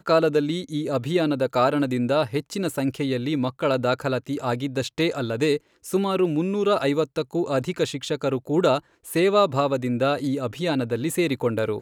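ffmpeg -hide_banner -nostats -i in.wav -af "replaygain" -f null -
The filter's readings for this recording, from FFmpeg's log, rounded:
track_gain = +3.5 dB
track_peak = 0.343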